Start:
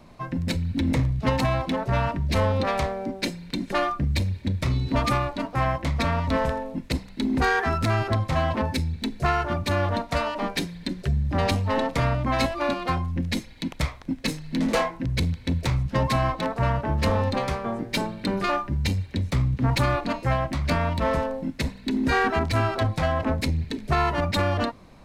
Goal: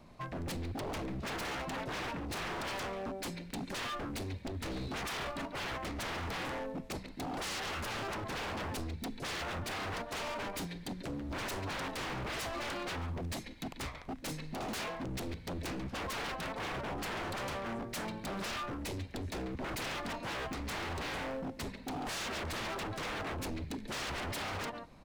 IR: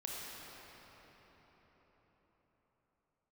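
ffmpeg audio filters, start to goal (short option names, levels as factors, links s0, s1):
-filter_complex "[0:a]asplit=2[s0][s1];[s1]adelay=140,highpass=300,lowpass=3400,asoftclip=type=hard:threshold=0.0944,volume=0.282[s2];[s0][s2]amix=inputs=2:normalize=0,aeval=exprs='0.0473*(abs(mod(val(0)/0.0473+3,4)-2)-1)':c=same,volume=0.447"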